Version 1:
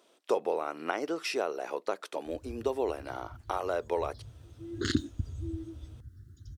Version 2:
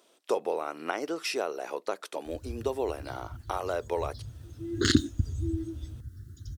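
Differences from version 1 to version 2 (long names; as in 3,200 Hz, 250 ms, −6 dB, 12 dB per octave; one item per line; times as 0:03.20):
background +6.0 dB
master: add high-shelf EQ 5,400 Hz +6 dB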